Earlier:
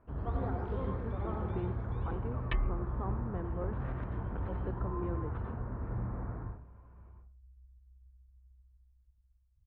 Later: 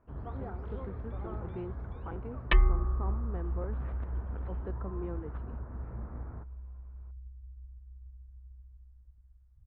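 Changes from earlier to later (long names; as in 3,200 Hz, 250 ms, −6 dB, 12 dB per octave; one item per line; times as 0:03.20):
second sound +10.0 dB
reverb: off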